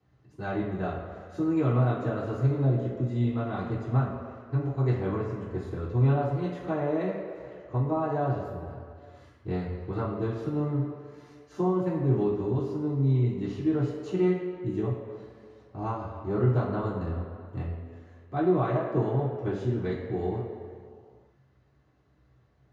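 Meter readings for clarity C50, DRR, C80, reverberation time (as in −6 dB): 2.0 dB, −9.0 dB, 4.0 dB, 2.2 s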